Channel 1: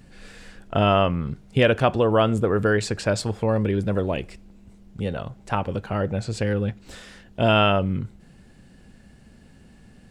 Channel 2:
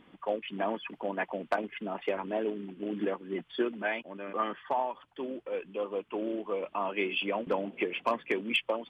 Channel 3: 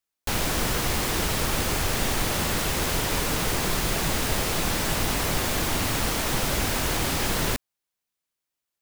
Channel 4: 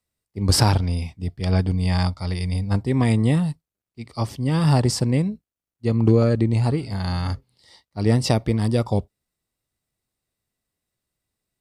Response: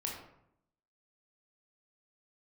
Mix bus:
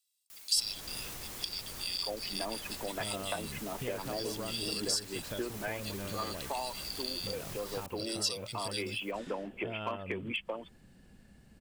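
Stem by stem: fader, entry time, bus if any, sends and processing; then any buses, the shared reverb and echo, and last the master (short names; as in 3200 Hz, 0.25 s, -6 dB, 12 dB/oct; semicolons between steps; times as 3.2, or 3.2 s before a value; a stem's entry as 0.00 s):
-8.5 dB, 2.25 s, no send, compressor 2.5:1, threshold -32 dBFS, peak gain reduction 13 dB
-2.5 dB, 1.80 s, no send, dry
-10.0 dB, 0.30 s, no send, high shelf 5300 Hz +8.5 dB; limiter -15.5 dBFS, peak gain reduction 7 dB; fast leveller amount 100%; auto duck -10 dB, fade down 1.25 s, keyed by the fourth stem
+2.5 dB, 0.00 s, no send, steep high-pass 2900 Hz; comb 1.5 ms, depth 83%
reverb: off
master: compressor 2:1, threshold -36 dBFS, peak gain reduction 13 dB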